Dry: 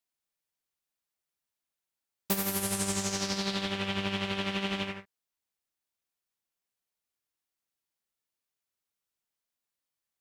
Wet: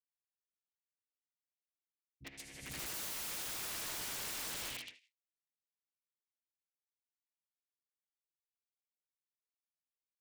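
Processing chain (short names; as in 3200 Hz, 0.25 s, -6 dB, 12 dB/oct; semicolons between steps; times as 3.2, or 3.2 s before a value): cycle switcher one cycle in 3, inverted; Doppler pass-by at 3.62, 14 m/s, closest 3.4 m; LPF 9200 Hz 24 dB/oct; gate -43 dBFS, range -13 dB; resonant high shelf 1600 Hz +8 dB, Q 3; reverse; compressor 12:1, threshold -33 dBFS, peak gain reduction 13 dB; reverse; three bands offset in time lows, mids, highs 40/170 ms, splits 210/3400 Hz; wrapped overs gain 40.5 dB; gain +3.5 dB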